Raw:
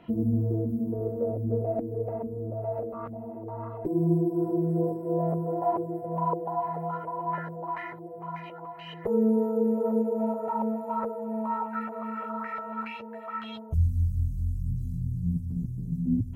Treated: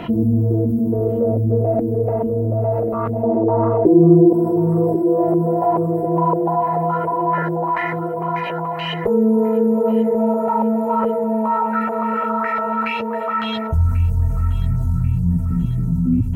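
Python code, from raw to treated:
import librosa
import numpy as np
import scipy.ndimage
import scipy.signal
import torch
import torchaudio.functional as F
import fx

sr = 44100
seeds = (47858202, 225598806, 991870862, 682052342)

y = fx.peak_eq(x, sr, hz=400.0, db=14.0, octaves=2.8, at=(3.23, 4.33))
y = fx.echo_feedback(y, sr, ms=1089, feedback_pct=38, wet_db=-14.0)
y = fx.env_flatten(y, sr, amount_pct=50)
y = y * 10.0 ** (1.0 / 20.0)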